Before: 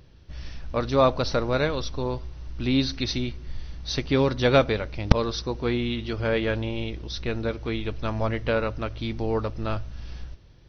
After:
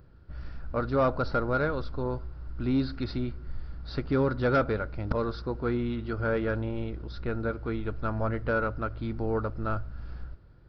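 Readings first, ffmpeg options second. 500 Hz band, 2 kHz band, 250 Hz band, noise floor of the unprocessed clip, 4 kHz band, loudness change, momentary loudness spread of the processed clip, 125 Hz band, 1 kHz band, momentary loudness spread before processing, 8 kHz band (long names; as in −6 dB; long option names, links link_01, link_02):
−4.5 dB, −3.0 dB, −3.0 dB, −50 dBFS, −15.0 dB, −4.0 dB, 16 LU, −3.5 dB, −2.5 dB, 18 LU, can't be measured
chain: -af "equalizer=frequency=1400:width_type=o:width=0.3:gain=13,aresample=11025,asoftclip=type=tanh:threshold=-13.5dB,aresample=44100,equalizer=frequency=3300:width_type=o:width=1.7:gain=-14,volume=-2dB"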